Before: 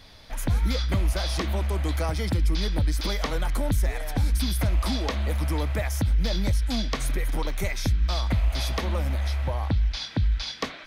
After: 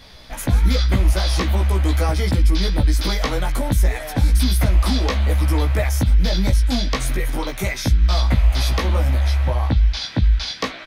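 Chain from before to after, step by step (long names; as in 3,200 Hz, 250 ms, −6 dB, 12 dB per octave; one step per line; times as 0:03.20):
double-tracking delay 16 ms −3 dB
level +4.5 dB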